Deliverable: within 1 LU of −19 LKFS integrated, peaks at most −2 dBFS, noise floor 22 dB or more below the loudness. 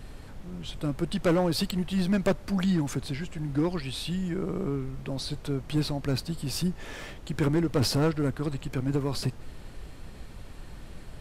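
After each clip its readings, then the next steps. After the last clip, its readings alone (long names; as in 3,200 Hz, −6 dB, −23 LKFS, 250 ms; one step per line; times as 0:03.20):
share of clipped samples 1.2%; peaks flattened at −19.0 dBFS; background noise floor −45 dBFS; target noise floor −51 dBFS; integrated loudness −29.0 LKFS; sample peak −19.0 dBFS; target loudness −19.0 LKFS
→ clipped peaks rebuilt −19 dBFS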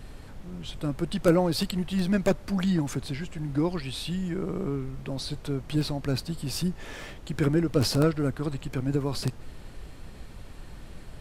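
share of clipped samples 0.0%; background noise floor −45 dBFS; target noise floor −51 dBFS
→ noise reduction from a noise print 6 dB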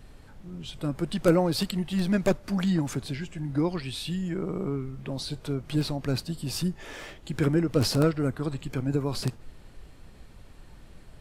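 background noise floor −50 dBFS; target noise floor −51 dBFS
→ noise reduction from a noise print 6 dB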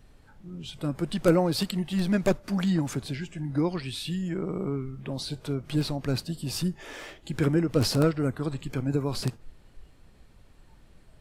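background noise floor −55 dBFS; integrated loudness −28.5 LKFS; sample peak −10.0 dBFS; target loudness −19.0 LKFS
→ level +9.5 dB
brickwall limiter −2 dBFS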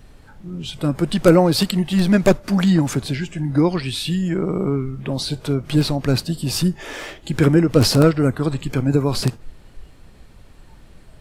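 integrated loudness −19.0 LKFS; sample peak −2.0 dBFS; background noise floor −46 dBFS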